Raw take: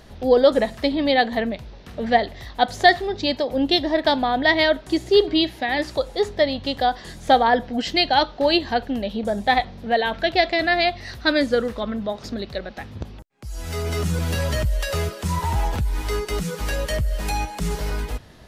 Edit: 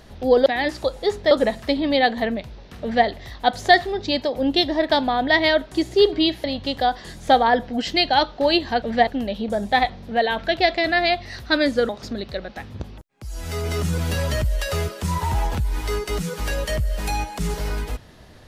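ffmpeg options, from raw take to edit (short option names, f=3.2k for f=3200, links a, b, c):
-filter_complex "[0:a]asplit=7[a][b][c][d][e][f][g];[a]atrim=end=0.462[h];[b]atrim=start=5.588:end=6.442[i];[c]atrim=start=0.458:end=5.592[j];[d]atrim=start=6.438:end=8.822[k];[e]atrim=start=1.958:end=2.212[l];[f]atrim=start=8.818:end=11.642[m];[g]atrim=start=12.098[n];[h][i]acrossfade=d=0.004:c1=hsin:c2=hsin[o];[o][j]acrossfade=d=0.004:c1=hsin:c2=hsin[p];[p][k]acrossfade=d=0.004:c1=hsin:c2=hsin[q];[q][l]acrossfade=d=0.004:c1=hsin:c2=hsin[r];[r][m]acrossfade=d=0.004:c1=hsin:c2=hsin[s];[s][n]acrossfade=d=0.004:c1=hsin:c2=hsin"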